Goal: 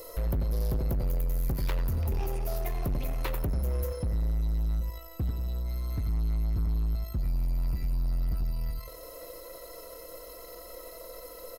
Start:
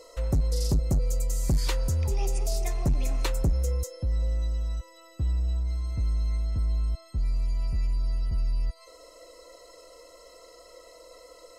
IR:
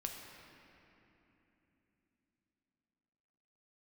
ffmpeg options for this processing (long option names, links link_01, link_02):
-filter_complex "[0:a]acrossover=split=3600[link_01][link_02];[link_02]acompressor=threshold=-55dB:ratio=4:attack=1:release=60[link_03];[link_01][link_03]amix=inputs=2:normalize=0,lowshelf=frequency=290:gain=7,acrossover=split=380|5500[link_04][link_05][link_06];[link_04]acompressor=threshold=-26dB:ratio=6[link_07];[link_07][link_05][link_06]amix=inputs=3:normalize=0,aexciter=amount=14.7:drive=5.9:freq=11000,asplit=2[link_08][link_09];[link_09]aeval=exprs='0.0501*(abs(mod(val(0)/0.0501+3,4)-2)-1)':channel_layout=same,volume=-11.5dB[link_10];[link_08][link_10]amix=inputs=2:normalize=0,asplit=2[link_11][link_12];[link_12]adelay=89,lowpass=frequency=1700:poles=1,volume=-5dB,asplit=2[link_13][link_14];[link_14]adelay=89,lowpass=frequency=1700:poles=1,volume=0.34,asplit=2[link_15][link_16];[link_16]adelay=89,lowpass=frequency=1700:poles=1,volume=0.34,asplit=2[link_17][link_18];[link_18]adelay=89,lowpass=frequency=1700:poles=1,volume=0.34[link_19];[link_11][link_13][link_15][link_17][link_19]amix=inputs=5:normalize=0,asoftclip=type=tanh:threshold=-24.5dB,aeval=exprs='0.0596*(cos(1*acos(clip(val(0)/0.0596,-1,1)))-cos(1*PI/2))+0.00299*(cos(8*acos(clip(val(0)/0.0596,-1,1)))-cos(8*PI/2))':channel_layout=same"